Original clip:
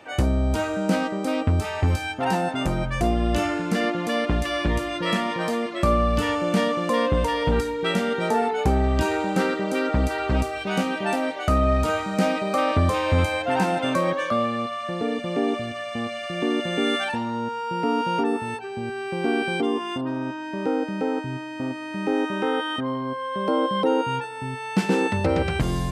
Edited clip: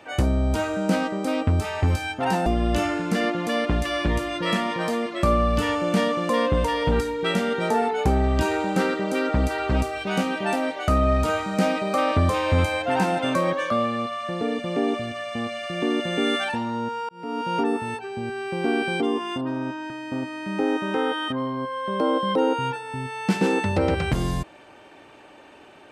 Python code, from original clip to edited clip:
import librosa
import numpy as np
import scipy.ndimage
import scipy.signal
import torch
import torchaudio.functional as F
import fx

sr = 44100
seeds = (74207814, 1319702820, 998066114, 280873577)

y = fx.edit(x, sr, fx.cut(start_s=2.46, length_s=0.6),
    fx.fade_in_span(start_s=17.69, length_s=0.51),
    fx.cut(start_s=20.5, length_s=0.88), tone=tone)